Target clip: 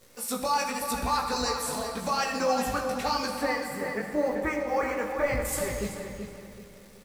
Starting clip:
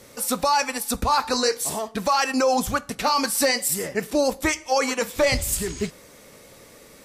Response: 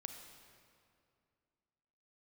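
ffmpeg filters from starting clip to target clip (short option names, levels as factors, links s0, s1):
-filter_complex "[0:a]asettb=1/sr,asplit=3[s0][s1][s2];[s0]atrim=end=3.294[s3];[s1]atrim=start=3.29:end=5.45,asetpts=PTS-STARTPTS,afade=t=in:d=0.004:c=qsin,afade=t=out:st=2.156:d=0.004:c=qsin,highshelf=f=2600:t=q:w=1.5:g=-13.5[s4];[s2]atrim=start=5.446[s5];[s3][s4]acrossfade=d=0.004:c1=hsin:c2=qsin[s6];[s6][s5]acrossfade=d=0.004:c1=qsin:c2=hsin,acrusher=bits=8:dc=4:mix=0:aa=0.000001,flanger=delay=16:depth=4.8:speed=0.92,asplit=2[s7][s8];[s8]adelay=382,lowpass=f=3400:p=1,volume=0.473,asplit=2[s9][s10];[s10]adelay=382,lowpass=f=3400:p=1,volume=0.36,asplit=2[s11][s12];[s12]adelay=382,lowpass=f=3400:p=1,volume=0.36,asplit=2[s13][s14];[s14]adelay=382,lowpass=f=3400:p=1,volume=0.36[s15];[s7][s9][s11][s13][s15]amix=inputs=5:normalize=0[s16];[1:a]atrim=start_sample=2205[s17];[s16][s17]afir=irnorm=-1:irlink=0"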